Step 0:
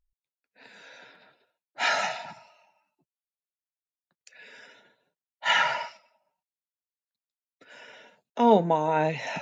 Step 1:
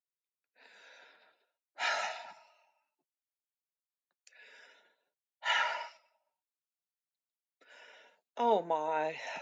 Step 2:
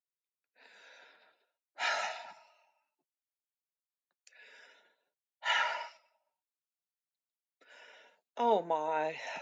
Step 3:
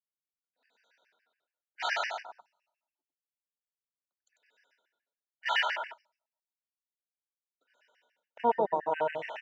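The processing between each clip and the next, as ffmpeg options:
-af "highpass=400,volume=-7.5dB"
-af anull
-af "aecho=1:1:95|190|285:0.631|0.145|0.0334,afwtdn=0.00631,afftfilt=real='re*gt(sin(2*PI*7.1*pts/sr)*(1-2*mod(floor(b*sr/1024/1500),2)),0)':imag='im*gt(sin(2*PI*7.1*pts/sr)*(1-2*mod(floor(b*sr/1024/1500),2)),0)':win_size=1024:overlap=0.75,volume=4dB"

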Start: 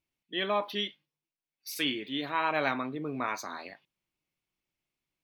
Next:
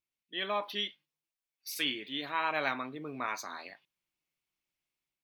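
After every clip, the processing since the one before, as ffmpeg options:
-af "dynaudnorm=f=250:g=3:m=5dB,tiltshelf=f=700:g=-3.5,volume=-9dB"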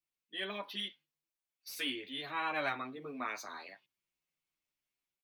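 -filter_complex "[0:a]acrossover=split=110|600|3000[a][b][c][d];[d]asoftclip=type=tanh:threshold=-37dB[e];[a][b][c][e]amix=inputs=4:normalize=0,asplit=2[f][g];[g]adelay=9.2,afreqshift=-0.92[h];[f][h]amix=inputs=2:normalize=1"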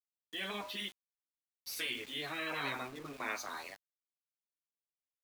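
-af "bandreject=f=123:t=h:w=4,bandreject=f=246:t=h:w=4,bandreject=f=369:t=h:w=4,bandreject=f=492:t=h:w=4,bandreject=f=615:t=h:w=4,bandreject=f=738:t=h:w=4,bandreject=f=861:t=h:w=4,bandreject=f=984:t=h:w=4,bandreject=f=1.107k:t=h:w=4,bandreject=f=1.23k:t=h:w=4,bandreject=f=1.353k:t=h:w=4,bandreject=f=1.476k:t=h:w=4,bandreject=f=1.599k:t=h:w=4,afftfilt=real='re*lt(hypot(re,im),0.0501)':imag='im*lt(hypot(re,im),0.0501)':win_size=1024:overlap=0.75,aeval=exprs='val(0)*gte(abs(val(0)),0.00251)':c=same,volume=3.5dB"

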